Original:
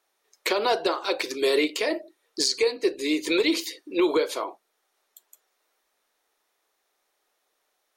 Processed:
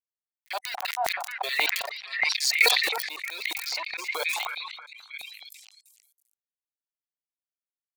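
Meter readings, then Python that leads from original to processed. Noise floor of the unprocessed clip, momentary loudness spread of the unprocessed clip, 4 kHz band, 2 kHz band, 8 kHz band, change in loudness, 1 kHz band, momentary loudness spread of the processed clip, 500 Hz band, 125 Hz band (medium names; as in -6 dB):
-75 dBFS, 9 LU, +1.5 dB, +5.5 dB, +1.0 dB, -1.0 dB, -0.5 dB, 20 LU, -13.5 dB, no reading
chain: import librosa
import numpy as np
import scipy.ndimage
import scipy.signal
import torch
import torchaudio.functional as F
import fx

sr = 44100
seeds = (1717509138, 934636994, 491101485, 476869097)

y = fx.level_steps(x, sr, step_db=24)
y = 10.0 ** (-20.5 / 20.0) * np.tanh(y / 10.0 ** (-20.5 / 20.0))
y = fx.spec_gate(y, sr, threshold_db=-30, keep='strong')
y = fx.hum_notches(y, sr, base_hz=60, count=2)
y = np.where(np.abs(y) >= 10.0 ** (-39.5 / 20.0), y, 0.0)
y = fx.echo_stepped(y, sr, ms=314, hz=950.0, octaves=0.7, feedback_pct=70, wet_db=-5)
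y = fx.noise_reduce_blind(y, sr, reduce_db=12)
y = fx.tilt_eq(y, sr, slope=4.0)
y = fx.auto_swell(y, sr, attack_ms=409.0)
y = fx.filter_lfo_highpass(y, sr, shape='square', hz=4.7, low_hz=760.0, high_hz=2000.0, q=6.6)
y = fx.sustainer(y, sr, db_per_s=43.0)
y = y * librosa.db_to_amplitude(5.5)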